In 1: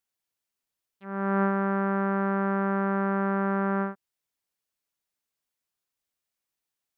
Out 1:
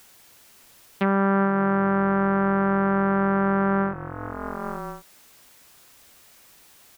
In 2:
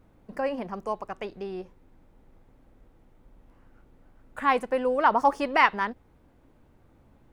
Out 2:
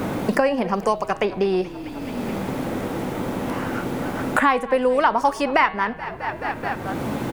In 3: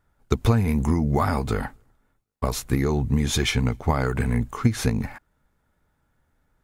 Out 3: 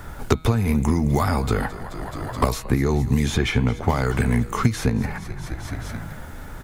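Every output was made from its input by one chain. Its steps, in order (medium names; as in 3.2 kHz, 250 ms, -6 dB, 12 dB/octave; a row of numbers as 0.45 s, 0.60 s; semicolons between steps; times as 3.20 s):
de-hum 159.4 Hz, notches 29; frequency-shifting echo 214 ms, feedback 59%, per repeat -44 Hz, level -20 dB; three bands compressed up and down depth 100%; normalise loudness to -23 LUFS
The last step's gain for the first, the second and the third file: +4.5 dB, +8.5 dB, +1.5 dB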